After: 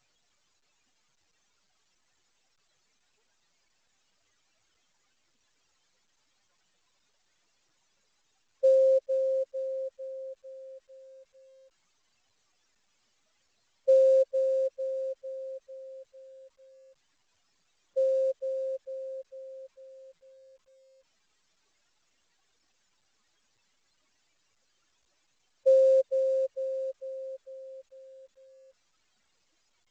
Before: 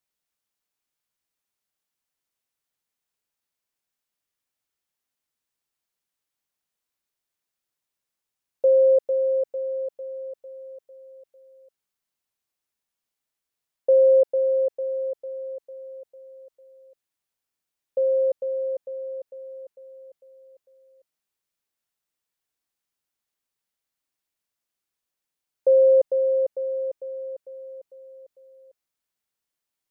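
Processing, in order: spectral contrast enhancement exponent 3.9; reverb removal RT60 0.66 s; trim -3 dB; A-law 128 kbps 16 kHz

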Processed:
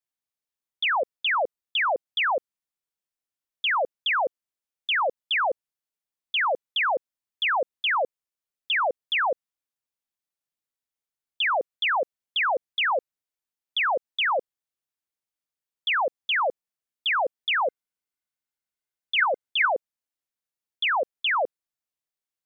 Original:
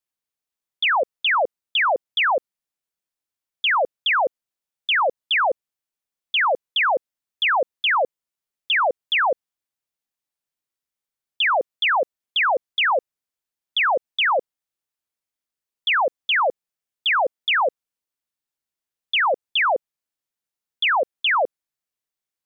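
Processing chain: 17.66–19.73 s: small resonant body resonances 1.5/2.1 kHz, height 10 dB, ringing for 50 ms; trim -4.5 dB

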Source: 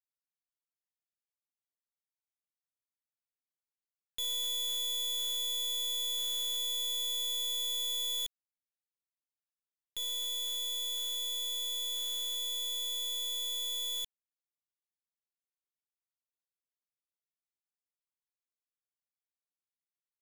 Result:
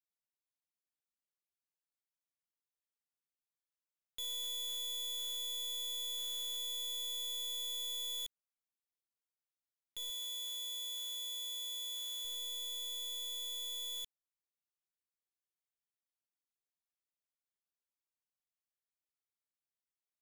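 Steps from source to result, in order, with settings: 10.10–12.25 s: high-pass 650 Hz 6 dB/octave; trim -6 dB

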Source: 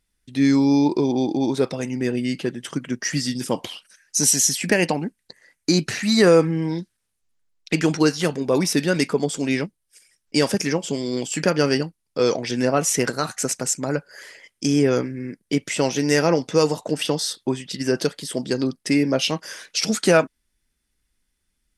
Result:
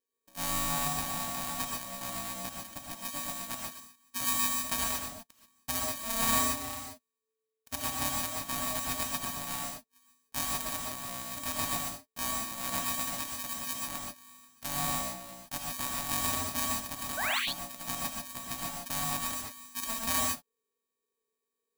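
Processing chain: sorted samples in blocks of 64 samples; pre-emphasis filter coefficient 0.8; painted sound rise, 17.17–17.39 s, 980–4300 Hz -25 dBFS; ring modulator 440 Hz; gated-style reverb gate 160 ms rising, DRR -1.5 dB; trim -5.5 dB

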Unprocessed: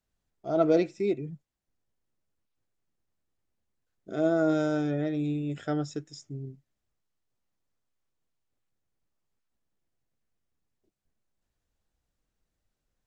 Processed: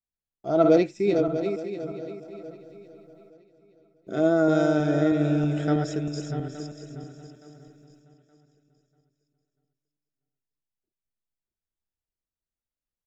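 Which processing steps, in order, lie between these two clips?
backward echo that repeats 320 ms, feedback 52%, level -5.5 dB; gate with hold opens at -54 dBFS; feedback delay 870 ms, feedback 30%, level -17.5 dB; trim +4 dB

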